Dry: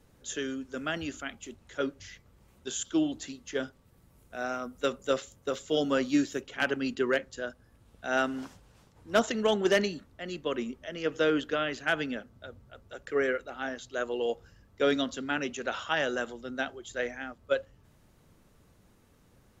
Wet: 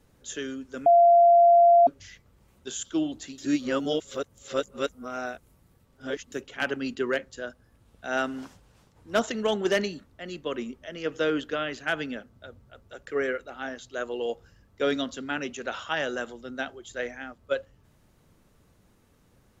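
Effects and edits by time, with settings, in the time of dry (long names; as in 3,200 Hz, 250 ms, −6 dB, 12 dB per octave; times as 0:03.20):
0:00.86–0:01.87: beep over 689 Hz −13 dBFS
0:03.38–0:06.32: reverse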